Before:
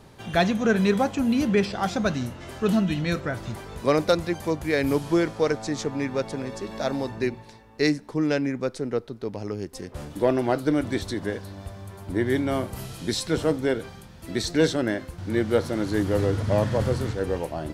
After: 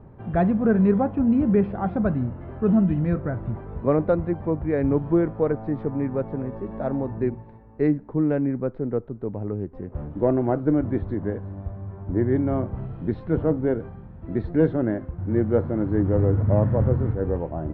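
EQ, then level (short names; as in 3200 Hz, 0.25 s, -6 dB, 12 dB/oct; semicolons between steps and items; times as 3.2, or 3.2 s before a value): LPF 1300 Hz 12 dB/oct; air absorption 400 m; low shelf 240 Hz +7 dB; 0.0 dB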